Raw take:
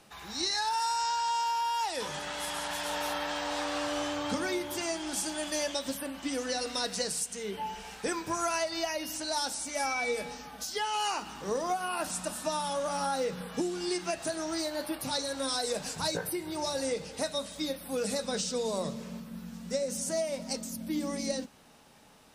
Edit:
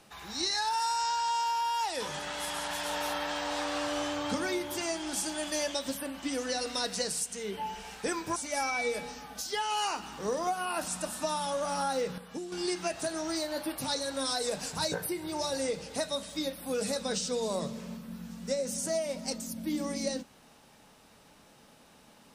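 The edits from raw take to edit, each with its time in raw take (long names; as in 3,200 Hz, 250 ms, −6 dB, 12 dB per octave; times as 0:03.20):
0:08.36–0:09.59: remove
0:13.41–0:13.75: clip gain −7.5 dB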